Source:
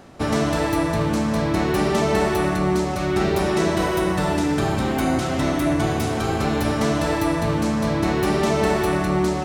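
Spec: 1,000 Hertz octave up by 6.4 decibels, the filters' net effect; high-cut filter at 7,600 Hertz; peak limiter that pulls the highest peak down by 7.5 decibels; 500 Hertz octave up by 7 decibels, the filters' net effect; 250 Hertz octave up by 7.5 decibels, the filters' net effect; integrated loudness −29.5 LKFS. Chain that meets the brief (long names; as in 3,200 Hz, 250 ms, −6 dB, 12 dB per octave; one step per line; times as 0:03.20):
low-pass filter 7,600 Hz
parametric band 250 Hz +8 dB
parametric band 500 Hz +5 dB
parametric band 1,000 Hz +6 dB
level −12.5 dB
brickwall limiter −21 dBFS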